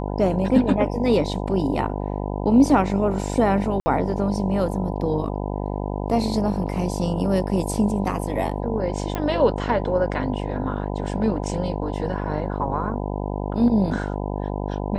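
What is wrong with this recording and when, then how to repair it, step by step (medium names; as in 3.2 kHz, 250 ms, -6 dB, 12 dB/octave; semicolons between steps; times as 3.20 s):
buzz 50 Hz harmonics 20 -27 dBFS
3.80–3.86 s: dropout 60 ms
9.15 s: pop -13 dBFS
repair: de-click; de-hum 50 Hz, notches 20; interpolate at 3.80 s, 60 ms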